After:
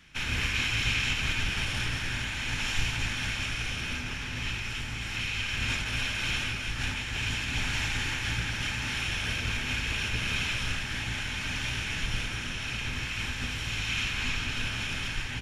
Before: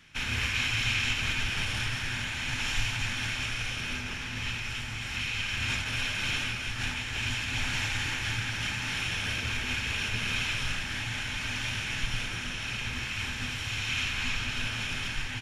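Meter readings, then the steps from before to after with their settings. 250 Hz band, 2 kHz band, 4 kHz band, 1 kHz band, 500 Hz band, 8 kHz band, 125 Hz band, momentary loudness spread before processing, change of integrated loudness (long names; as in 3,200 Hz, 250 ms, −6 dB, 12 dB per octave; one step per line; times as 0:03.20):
+1.5 dB, 0.0 dB, 0.0 dB, 0.0 dB, +1.5 dB, 0.0 dB, +1.5 dB, 5 LU, 0.0 dB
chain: sub-octave generator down 1 octave, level −1 dB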